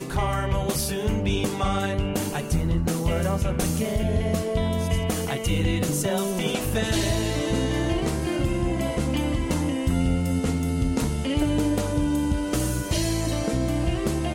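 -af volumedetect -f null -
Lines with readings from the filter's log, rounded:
mean_volume: -24.0 dB
max_volume: -12.1 dB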